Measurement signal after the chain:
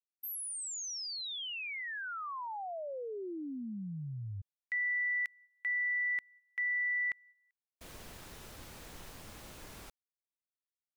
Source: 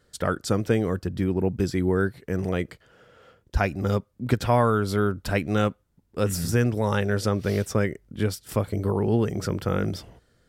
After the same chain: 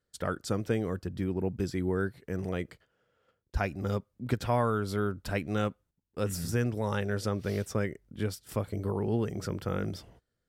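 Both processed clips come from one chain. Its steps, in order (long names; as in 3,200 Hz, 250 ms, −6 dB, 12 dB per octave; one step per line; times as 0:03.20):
noise gate −50 dBFS, range −12 dB
level −7 dB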